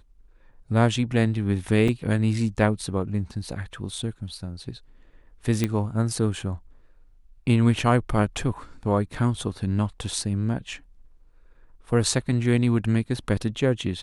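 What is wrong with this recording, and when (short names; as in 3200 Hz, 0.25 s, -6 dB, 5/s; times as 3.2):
1.88 gap 3.7 ms
5.64 pop -10 dBFS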